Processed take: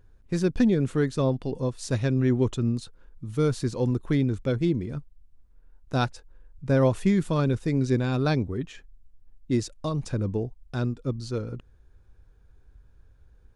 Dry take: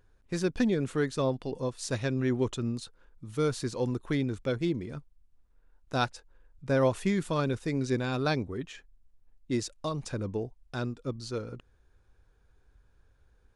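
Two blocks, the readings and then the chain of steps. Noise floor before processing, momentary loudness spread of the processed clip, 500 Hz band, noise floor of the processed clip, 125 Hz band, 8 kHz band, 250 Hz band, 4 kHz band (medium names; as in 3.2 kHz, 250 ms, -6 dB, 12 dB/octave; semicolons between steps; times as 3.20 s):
-65 dBFS, 11 LU, +3.0 dB, -57 dBFS, +7.5 dB, 0.0 dB, +5.5 dB, 0.0 dB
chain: bass shelf 320 Hz +9 dB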